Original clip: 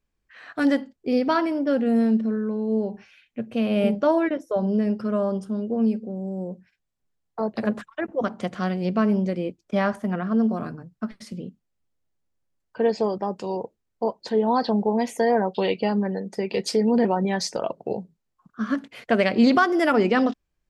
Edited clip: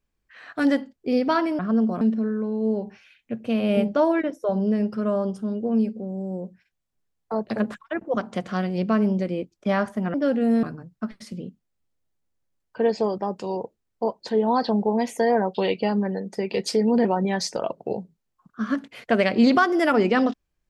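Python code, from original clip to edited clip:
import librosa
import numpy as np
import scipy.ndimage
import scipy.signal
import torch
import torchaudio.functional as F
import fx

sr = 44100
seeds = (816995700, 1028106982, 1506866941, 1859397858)

y = fx.edit(x, sr, fx.swap(start_s=1.59, length_s=0.49, other_s=10.21, other_length_s=0.42), tone=tone)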